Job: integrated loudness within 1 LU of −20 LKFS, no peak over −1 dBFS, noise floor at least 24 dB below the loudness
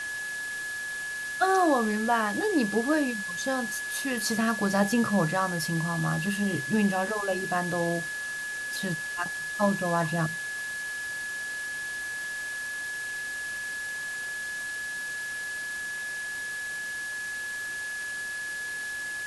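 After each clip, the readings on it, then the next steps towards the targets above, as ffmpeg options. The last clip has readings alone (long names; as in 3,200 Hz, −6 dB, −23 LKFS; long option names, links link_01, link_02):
interfering tone 1,700 Hz; level of the tone −32 dBFS; background noise floor −35 dBFS; target noise floor −53 dBFS; integrated loudness −29.0 LKFS; sample peak −12.5 dBFS; target loudness −20.0 LKFS
→ -af "bandreject=frequency=1700:width=30"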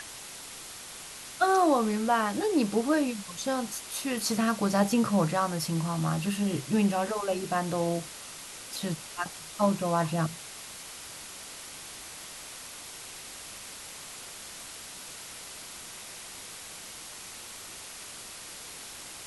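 interfering tone none found; background noise floor −44 dBFS; target noise floor −56 dBFS
→ -af "afftdn=noise_reduction=12:noise_floor=-44"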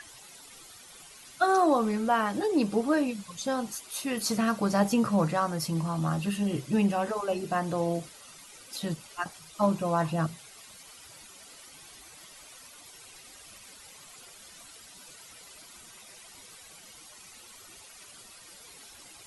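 background noise floor −51 dBFS; target noise floor −53 dBFS
→ -af "afftdn=noise_reduction=6:noise_floor=-51"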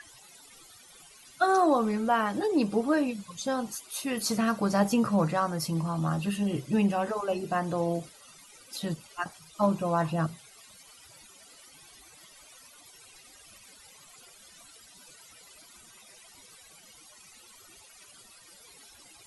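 background noise floor −54 dBFS; integrated loudness −28.5 LKFS; sample peak −13.0 dBFS; target loudness −20.0 LKFS
→ -af "volume=8.5dB"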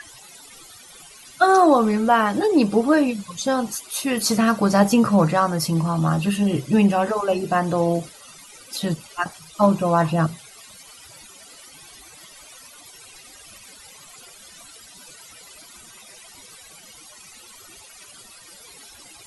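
integrated loudness −20.0 LKFS; sample peak −4.5 dBFS; background noise floor −46 dBFS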